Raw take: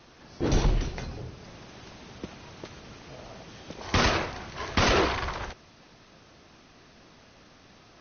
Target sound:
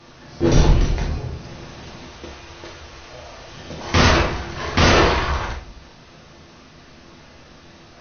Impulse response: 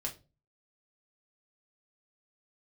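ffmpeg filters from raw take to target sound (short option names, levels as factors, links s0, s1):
-filter_complex "[0:a]asettb=1/sr,asplit=3[s0][s1][s2];[s0]atrim=end=2.064[s3];[s1]atrim=start=2.06:end=3.53,asetpts=PTS-STARTPTS,afade=t=in:d=0.004:c=qsin,afade=t=out:st=1.466:d=0.004:c=qsin,equalizer=f=180:t=o:w=1.6:g=-13[s4];[s2]atrim=start=3.526[s5];[s3][s4]acrossfade=d=0.004:c1=hsin:c2=qsin[s6];[s6][s5]acrossfade=d=0.004:c1=qsin:c2=hsin[s7];[1:a]atrim=start_sample=2205,asetrate=24696,aresample=44100[s8];[s7][s8]afir=irnorm=-1:irlink=0,volume=1.58"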